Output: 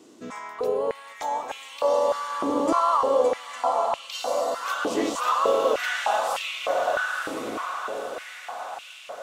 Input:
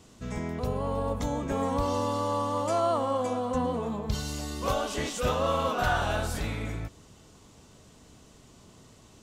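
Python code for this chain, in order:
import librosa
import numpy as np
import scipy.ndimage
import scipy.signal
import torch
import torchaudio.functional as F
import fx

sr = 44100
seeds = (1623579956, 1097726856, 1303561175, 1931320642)

y = fx.echo_diffused(x, sr, ms=992, feedback_pct=56, wet_db=-4.0)
y = fx.filter_held_highpass(y, sr, hz=3.3, low_hz=320.0, high_hz=2700.0)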